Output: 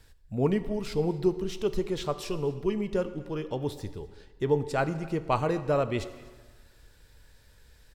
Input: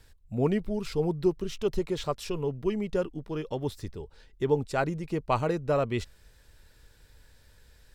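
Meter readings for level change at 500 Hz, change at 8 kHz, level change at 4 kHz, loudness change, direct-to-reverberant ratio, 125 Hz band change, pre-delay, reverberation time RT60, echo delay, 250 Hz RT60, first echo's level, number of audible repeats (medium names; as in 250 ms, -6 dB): +0.5 dB, 0.0 dB, 0.0 dB, 0.0 dB, 11.0 dB, +0.5 dB, 6 ms, 1.5 s, 249 ms, 1.3 s, -23.0 dB, 1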